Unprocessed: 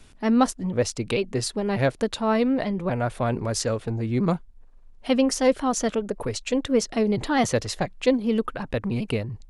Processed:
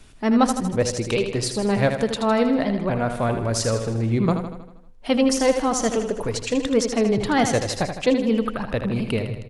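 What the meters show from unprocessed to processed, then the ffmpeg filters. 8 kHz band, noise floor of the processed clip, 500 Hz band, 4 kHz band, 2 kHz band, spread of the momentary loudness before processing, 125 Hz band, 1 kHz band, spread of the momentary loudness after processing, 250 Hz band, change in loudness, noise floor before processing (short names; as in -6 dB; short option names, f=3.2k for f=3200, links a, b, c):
+3.0 dB, -44 dBFS, +2.5 dB, +3.0 dB, +3.0 dB, 6 LU, +3.0 dB, +3.0 dB, 7 LU, +2.5 dB, +2.5 dB, -49 dBFS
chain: -filter_complex "[0:a]bandreject=f=252.7:t=h:w=4,bandreject=f=505.4:t=h:w=4,bandreject=f=758.1:t=h:w=4,asplit=2[a][b];[b]aecho=0:1:79|158|237|316|395|474|553:0.422|0.232|0.128|0.0702|0.0386|0.0212|0.0117[c];[a][c]amix=inputs=2:normalize=0,volume=2dB"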